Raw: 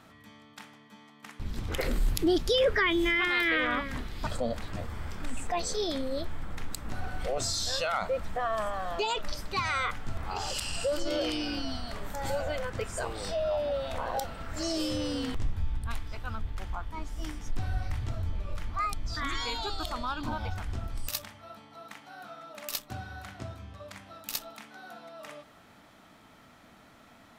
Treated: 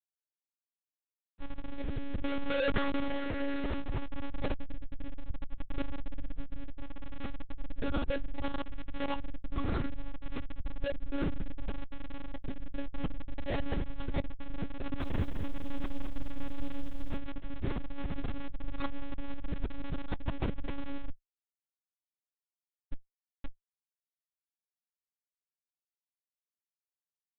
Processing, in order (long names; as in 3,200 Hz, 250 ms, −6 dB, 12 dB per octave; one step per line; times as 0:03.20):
adaptive Wiener filter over 25 samples
low-pass filter 1,900 Hz 24 dB per octave
gate on every frequency bin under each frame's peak −20 dB strong
low-shelf EQ 82 Hz +9 dB
comparator with hysteresis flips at −28 dBFS
flanger 0.37 Hz, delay 2.2 ms, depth 6.8 ms, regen +55%
rotating-speaker cabinet horn 0.65 Hz, later 7 Hz, at 0:12.62
one-pitch LPC vocoder at 8 kHz 280 Hz
0:14.79–0:17.17: feedback echo at a low word length 211 ms, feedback 35%, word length 10 bits, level −7 dB
level +3 dB